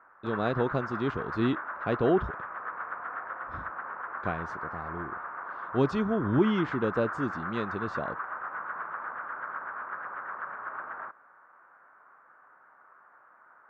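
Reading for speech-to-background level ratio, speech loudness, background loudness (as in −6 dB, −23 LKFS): 6.5 dB, −30.5 LKFS, −37.0 LKFS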